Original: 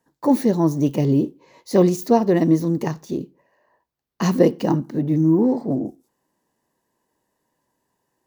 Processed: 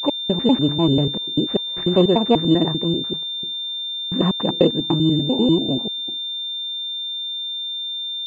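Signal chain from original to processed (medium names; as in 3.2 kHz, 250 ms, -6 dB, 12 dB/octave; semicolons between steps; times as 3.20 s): slices played last to first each 98 ms, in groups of 3; class-D stage that switches slowly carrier 3.6 kHz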